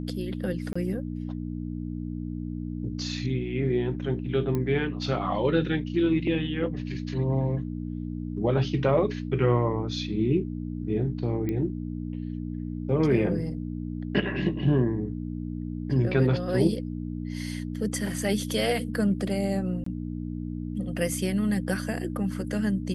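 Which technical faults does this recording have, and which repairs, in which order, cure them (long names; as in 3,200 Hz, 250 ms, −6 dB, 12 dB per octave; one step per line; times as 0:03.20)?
mains hum 60 Hz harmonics 5 −33 dBFS
0:00.73–0:00.76: drop-out 25 ms
0:04.55: click −17 dBFS
0:11.49: click −19 dBFS
0:19.84–0:19.86: drop-out 24 ms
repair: click removal
hum removal 60 Hz, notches 5
repair the gap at 0:00.73, 25 ms
repair the gap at 0:19.84, 24 ms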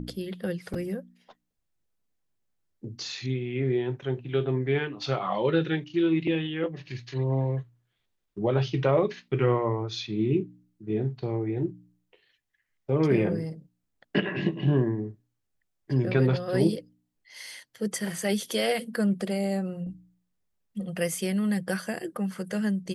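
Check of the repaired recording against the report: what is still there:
none of them is left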